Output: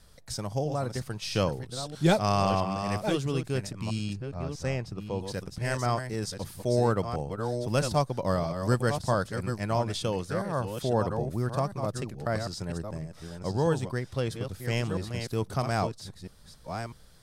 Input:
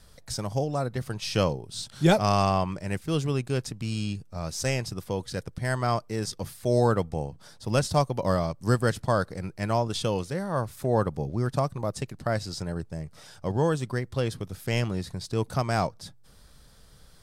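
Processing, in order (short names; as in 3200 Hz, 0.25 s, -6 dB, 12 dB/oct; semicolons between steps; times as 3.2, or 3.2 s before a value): reverse delay 0.651 s, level -7 dB; 4.13–5.21 LPF 1900 Hz 6 dB/oct; gain -2.5 dB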